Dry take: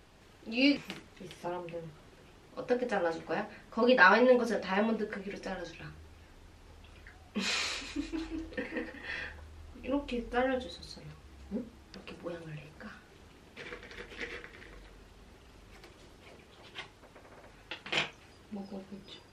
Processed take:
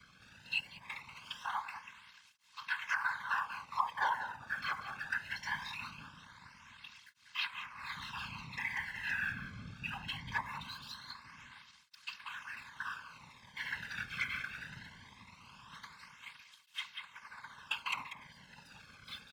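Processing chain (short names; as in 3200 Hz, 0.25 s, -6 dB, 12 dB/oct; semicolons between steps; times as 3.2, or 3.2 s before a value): Chebyshev band-stop 130–910 Hz, order 5; treble ducked by the level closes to 540 Hz, closed at -32.5 dBFS; LPF 4900 Hz 12 dB/oct; sample leveller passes 2; comb 1.9 ms, depth 98%; whisperiser; on a send: echo 0.19 s -10.5 dB; on the sum: tape flanging out of phase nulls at 0.21 Hz, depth 1.1 ms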